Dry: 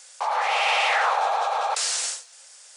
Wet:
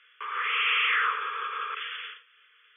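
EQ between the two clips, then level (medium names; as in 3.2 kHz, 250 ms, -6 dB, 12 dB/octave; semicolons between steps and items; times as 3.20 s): elliptic band-stop 420–1200 Hz, stop band 80 dB; brick-wall FIR low-pass 3.5 kHz; 0.0 dB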